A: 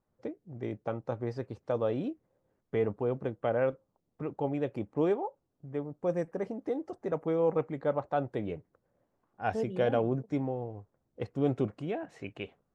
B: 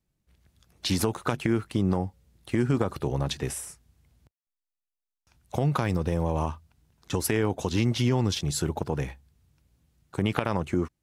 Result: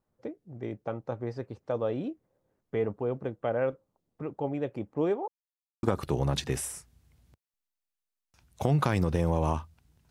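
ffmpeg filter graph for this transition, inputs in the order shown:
-filter_complex "[0:a]apad=whole_dur=10.1,atrim=end=10.1,asplit=2[a][b];[a]atrim=end=5.28,asetpts=PTS-STARTPTS,afade=t=out:st=5.276:d=0.004:c=hsin[c];[b]atrim=start=5.28:end=5.83,asetpts=PTS-STARTPTS,volume=0[d];[1:a]atrim=start=2.76:end=7.03,asetpts=PTS-STARTPTS,afade=t=in:d=0.004:c=hsin[e];[c][d][e]concat=n=3:v=0:a=1"

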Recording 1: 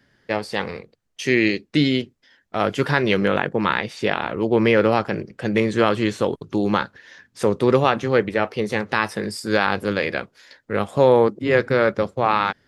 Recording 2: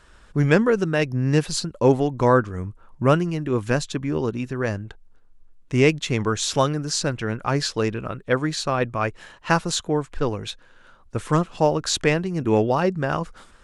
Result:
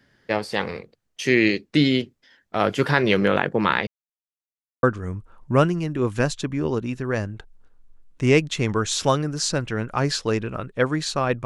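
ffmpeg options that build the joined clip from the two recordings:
-filter_complex "[0:a]apad=whole_dur=11.45,atrim=end=11.45,asplit=2[a][b];[a]atrim=end=3.87,asetpts=PTS-STARTPTS,afade=t=out:st=3.866:d=0.004:c=hsin[c];[b]atrim=start=3.87:end=4.83,asetpts=PTS-STARTPTS,volume=0[d];[1:a]atrim=start=2.34:end=8.96,asetpts=PTS-STARTPTS,afade=t=in:d=0.004:c=hsin[e];[c][d][e]concat=n=3:v=0:a=1"

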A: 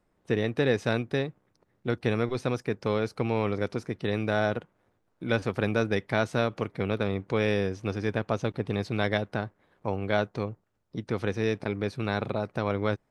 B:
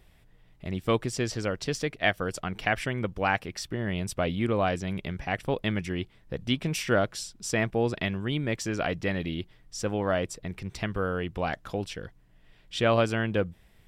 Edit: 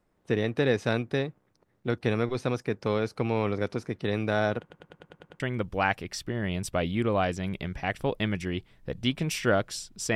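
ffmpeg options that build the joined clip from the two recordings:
-filter_complex "[0:a]apad=whole_dur=10.15,atrim=end=10.15,asplit=8[a][b][c][d][e][f][g][h];[a]atrim=end=4.702[i];[b]atrim=start=4.598:end=4.702[j];[c]atrim=start=4.598:end=4.702[k];[d]atrim=start=4.598:end=4.702[l];[e]atrim=start=4.598:end=4.702[m];[f]atrim=start=4.598:end=4.702[n];[g]atrim=start=4.598:end=4.702[o];[h]atrim=start=4.598:end=4.702[p];[1:a]atrim=start=2.838:end=7.59[q];[i][j]acrossfade=d=0.004:c1=hsin:c2=hsin[r];[r][k]acrossfade=d=0.004:c1=hsin:c2=hsin[s];[s][l]acrossfade=d=0.004:c1=hsin:c2=hsin[t];[t][m]acrossfade=d=0.004:c1=hsin:c2=hsin[u];[u][n]acrossfade=d=0.004:c1=hsin:c2=hsin[v];[v][o]acrossfade=d=0.004:c1=hsin:c2=hsin[w];[w][p]acrossfade=d=0.004:c1=hsin:c2=hsin[x];[x][q]acrossfade=d=0.004:c1=hsin:c2=hsin"

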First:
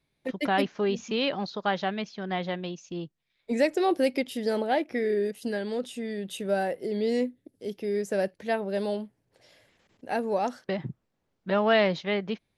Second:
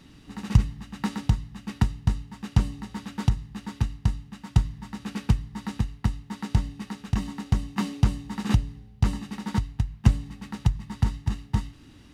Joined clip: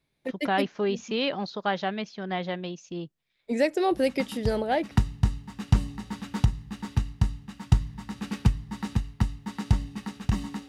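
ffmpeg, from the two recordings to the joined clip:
-filter_complex "[1:a]asplit=2[a][b];[0:a]apad=whole_dur=10.68,atrim=end=10.68,atrim=end=4.912[c];[b]atrim=start=1.748:end=7.52[d];[a]atrim=start=0.75:end=1.75,asetpts=PTS-STARTPTS,volume=-8dB,afade=t=in:d=0.004:c=hsin,afade=t=out:st=0.996:d=0.004:c=hsin,adelay=3910[e];[c][d]acrossfade=d=0.004:c1=hsin:c2=hsin[f];[f][e]amix=inputs=2:normalize=0"

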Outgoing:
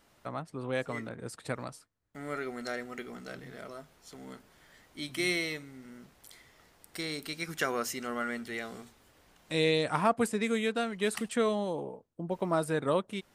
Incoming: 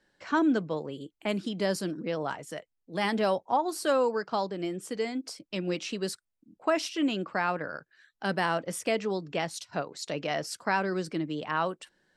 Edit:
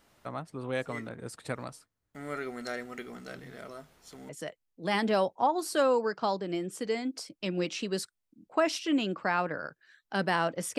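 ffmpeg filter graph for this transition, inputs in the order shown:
-filter_complex "[0:a]apad=whole_dur=10.78,atrim=end=10.78,atrim=end=4.292[a];[1:a]atrim=start=2.388:end=8.88[b];[a][b]acrossfade=d=0.004:c1=hsin:c2=hsin"

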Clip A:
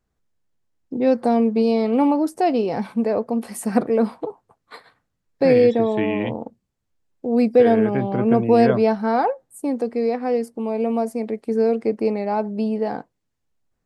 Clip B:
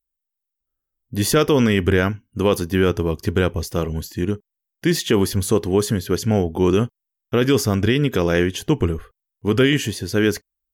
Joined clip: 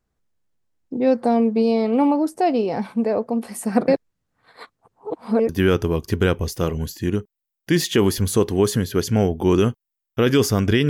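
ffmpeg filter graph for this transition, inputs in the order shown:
-filter_complex "[0:a]apad=whole_dur=10.89,atrim=end=10.89,asplit=2[a][b];[a]atrim=end=3.882[c];[b]atrim=start=3.878:end=5.492,asetpts=PTS-STARTPTS,areverse[d];[1:a]atrim=start=2.638:end=8.04[e];[c][d]acrossfade=d=0.004:c1=hsin:c2=hsin[f];[f][e]acrossfade=d=0.004:c1=hsin:c2=hsin"

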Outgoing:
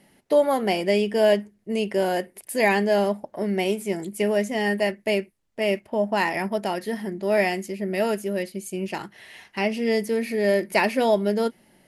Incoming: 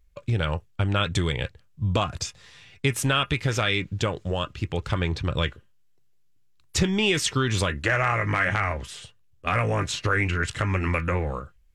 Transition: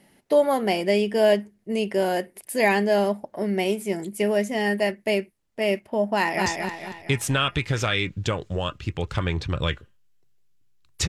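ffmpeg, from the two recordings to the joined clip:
-filter_complex "[0:a]apad=whole_dur=11.08,atrim=end=11.08,atrim=end=6.462[a];[1:a]atrim=start=2.208:end=6.83[b];[a][b]acrossfade=d=0.004:c1=hsin:c2=hsin,asplit=2[c][d];[d]afade=t=in:st=6.14:d=0.01,afade=t=out:st=6.46:d=0.01,aecho=0:1:230|460|690|920|1150|1380:0.668344|0.300755|0.13534|0.0609028|0.0274063|0.0123328[e];[c][e]amix=inputs=2:normalize=0"

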